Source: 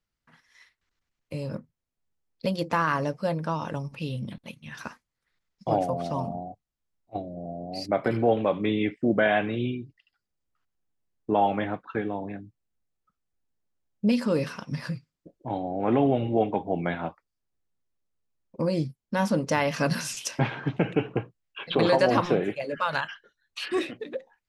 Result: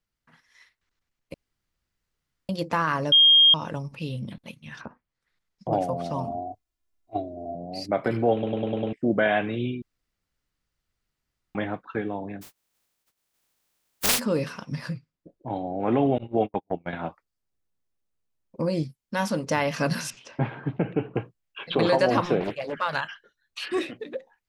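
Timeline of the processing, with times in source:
0:01.34–0:02.49: fill with room tone
0:03.12–0:03.54: beep over 3,230 Hz −12 dBFS
0:04.76–0:05.73: treble cut that deepens with the level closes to 720 Hz, closed at −36.5 dBFS
0:06.27–0:07.55: comb filter 2.9 ms, depth 81%
0:08.33: stutter in place 0.10 s, 6 plays
0:09.82–0:11.55: fill with room tone
0:12.41–0:14.18: compressing power law on the bin magnitudes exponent 0.11
0:14.93–0:15.56: high-shelf EQ 4,500 Hz −9 dB
0:16.18–0:16.93: noise gate −27 dBFS, range −41 dB
0:18.83–0:19.45: tilt shelving filter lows −3.5 dB
0:20.10–0:21.15: head-to-tape spacing loss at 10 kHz 32 dB
0:22.40–0:22.92: highs frequency-modulated by the lows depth 0.71 ms

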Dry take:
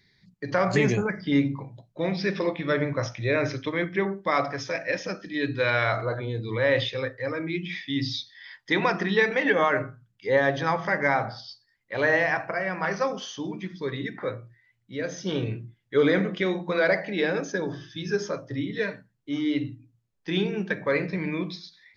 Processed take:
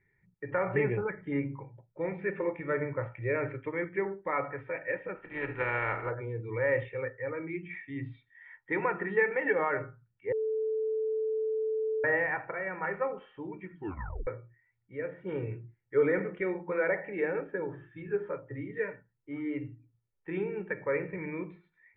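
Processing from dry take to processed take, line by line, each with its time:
0:05.15–0:06.09: compressing power law on the bin magnitudes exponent 0.47
0:10.32–0:12.04: beep over 438 Hz −24 dBFS
0:13.74: tape stop 0.53 s
whole clip: Butterworth low-pass 2,400 Hz 48 dB per octave; comb filter 2.2 ms, depth 56%; level −7.5 dB

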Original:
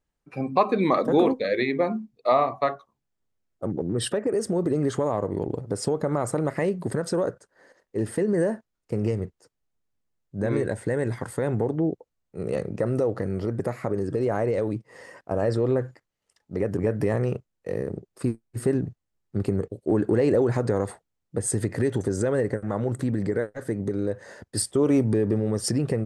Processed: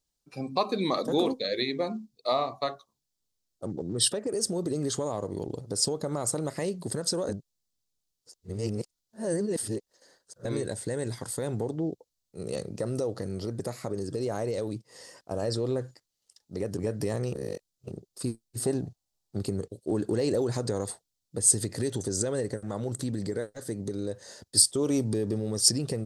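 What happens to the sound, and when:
0:07.29–0:10.45: reverse
0:17.33–0:17.91: reverse
0:18.60–0:19.39: parametric band 750 Hz +9.5 dB
whole clip: high shelf with overshoot 3,000 Hz +12.5 dB, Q 1.5; level −6 dB

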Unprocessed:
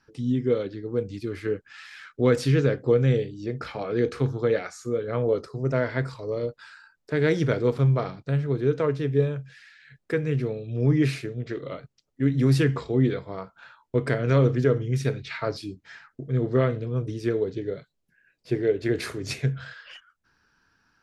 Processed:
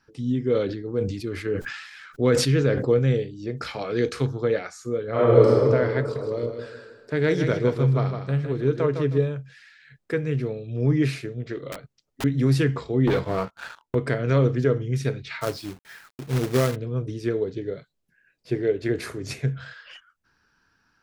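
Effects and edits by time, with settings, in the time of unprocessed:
0:00.40–0:02.99: level that may fall only so fast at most 58 dB per second
0:03.57–0:04.26: high-shelf EQ 2,500 Hz +10 dB
0:05.10–0:05.50: thrown reverb, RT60 2.4 s, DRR −10 dB
0:06.00–0:09.18: repeating echo 157 ms, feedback 29%, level −7 dB
0:11.72–0:12.24: wrap-around overflow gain 27 dB
0:13.07–0:13.95: leveller curve on the samples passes 3
0:15.41–0:16.76: log-companded quantiser 4 bits
0:18.91–0:19.48: dynamic equaliser 3,600 Hz, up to −4 dB, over −45 dBFS, Q 0.87

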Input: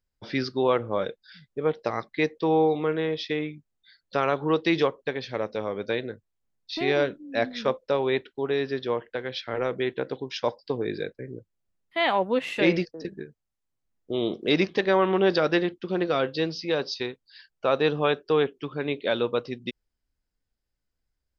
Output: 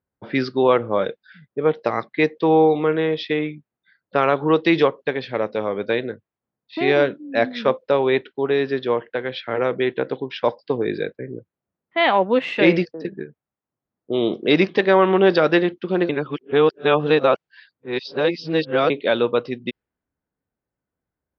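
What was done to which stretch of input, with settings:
0:16.09–0:18.90: reverse
whole clip: low-pass filter 3,800 Hz 12 dB per octave; low-pass that shuts in the quiet parts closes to 1,300 Hz, open at −22.5 dBFS; high-pass filter 120 Hz; level +6.5 dB

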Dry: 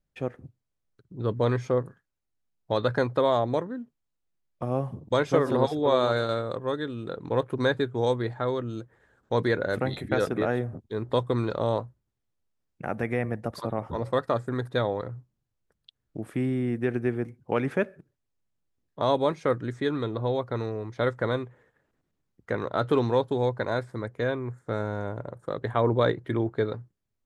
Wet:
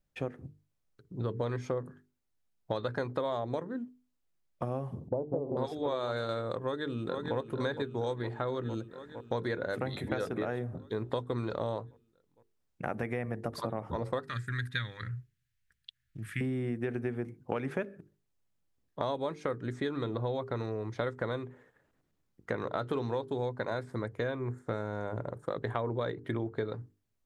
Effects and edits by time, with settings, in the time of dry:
0:05.08–0:05.57: Butterworth low-pass 830 Hz 48 dB per octave
0:06.60–0:07.36: delay throw 460 ms, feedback 70%, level −7 dB
0:14.28–0:16.41: drawn EQ curve 120 Hz 0 dB, 720 Hz −29 dB, 1,700 Hz +8 dB, 5,100 Hz +1 dB
whole clip: mains-hum notches 50/100/150/200/250/300/350/400/450 Hz; downward compressor, threshold −31 dBFS; level +1 dB

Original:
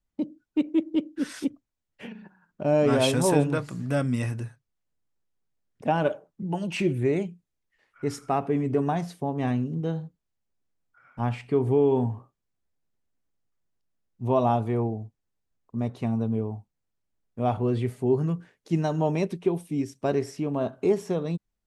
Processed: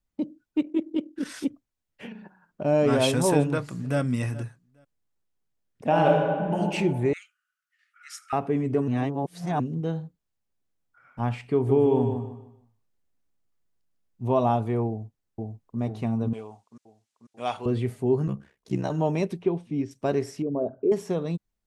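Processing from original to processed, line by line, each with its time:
0:00.60–0:01.26: amplitude modulation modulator 41 Hz, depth 35%
0:02.13–0:02.62: parametric band 640 Hz +5.5 dB 1.5 octaves
0:03.42–0:04.00: delay throw 420 ms, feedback 15%, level −17.5 dB
0:05.87–0:06.57: thrown reverb, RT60 1.9 s, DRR −3 dB
0:07.13–0:08.33: Chebyshev high-pass filter 1,200 Hz, order 10
0:08.88–0:09.60: reverse
0:11.54–0:14.31: repeating echo 152 ms, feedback 30%, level −6.5 dB
0:14.89–0:15.79: delay throw 490 ms, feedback 65%, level −1 dB
0:16.33–0:17.66: meter weighting curve ITU-R 468
0:18.27–0:18.91: ring modulation 32 Hz
0:19.42–0:19.91: high-frequency loss of the air 150 metres
0:20.42–0:20.92: spectral envelope exaggerated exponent 2

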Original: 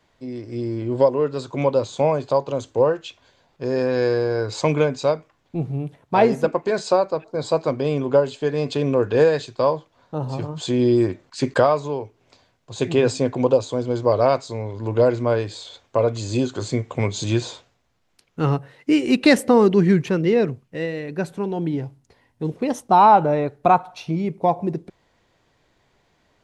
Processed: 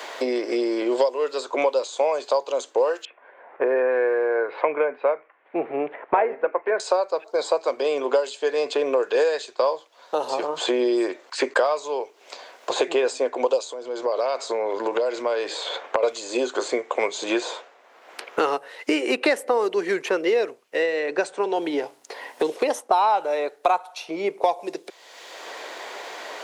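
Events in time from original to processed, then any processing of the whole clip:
0:03.05–0:06.80: Butterworth low-pass 2,100 Hz
0:13.61–0:16.03: downward compressor, threshold −27 dBFS
0:20.82–0:21.56: Butterworth low-pass 9,300 Hz 96 dB per octave
whole clip: high-pass filter 430 Hz 24 dB per octave; dynamic equaliser 9,900 Hz, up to +6 dB, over −50 dBFS, Q 0.86; multiband upward and downward compressor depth 100%

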